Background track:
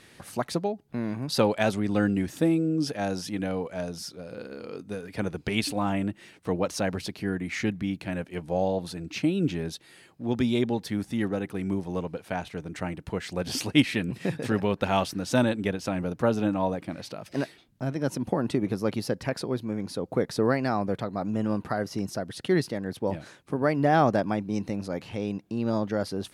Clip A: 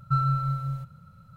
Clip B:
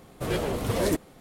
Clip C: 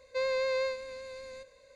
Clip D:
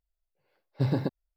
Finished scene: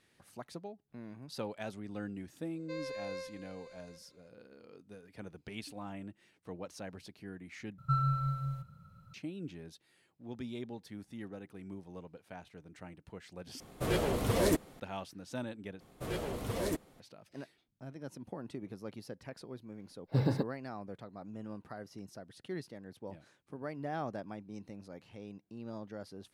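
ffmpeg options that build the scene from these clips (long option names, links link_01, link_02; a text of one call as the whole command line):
ffmpeg -i bed.wav -i cue0.wav -i cue1.wav -i cue2.wav -i cue3.wav -filter_complex "[2:a]asplit=2[link_01][link_02];[0:a]volume=-17dB,asplit=4[link_03][link_04][link_05][link_06];[link_03]atrim=end=7.784[link_07];[1:a]atrim=end=1.36,asetpts=PTS-STARTPTS,volume=-6dB[link_08];[link_04]atrim=start=9.136:end=13.604[link_09];[link_01]atrim=end=1.2,asetpts=PTS-STARTPTS,volume=-3dB[link_10];[link_05]atrim=start=14.796:end=15.804[link_11];[link_02]atrim=end=1.2,asetpts=PTS-STARTPTS,volume=-9.5dB[link_12];[link_06]atrim=start=16.996[link_13];[3:a]atrim=end=1.75,asetpts=PTS-STARTPTS,volume=-11.5dB,afade=type=in:duration=0.004:curve=hsin,afade=type=out:start_time=1.746:duration=0.004:curve=hsin,adelay=2540[link_14];[4:a]atrim=end=1.36,asetpts=PTS-STARTPTS,volume=-3dB,afade=type=in:duration=0.004:curve=hsin,afade=type=out:start_time=1.356:duration=0.004:curve=hsin,adelay=19340[link_15];[link_07][link_08]acrossfade=duration=0.004:curve1=hsin:curve2=hsin[link_16];[link_16][link_09]acrossfade=duration=0.004:curve1=hsin:curve2=hsin[link_17];[link_17][link_10]acrossfade=duration=0.004:curve1=hsin:curve2=hsin[link_18];[link_18][link_11]acrossfade=duration=0.004:curve1=hsin:curve2=hsin[link_19];[link_19][link_12]acrossfade=duration=0.004:curve1=hsin:curve2=hsin[link_20];[link_20][link_13]acrossfade=duration=0.004:curve1=hsin:curve2=hsin[link_21];[link_21][link_14][link_15]amix=inputs=3:normalize=0" out.wav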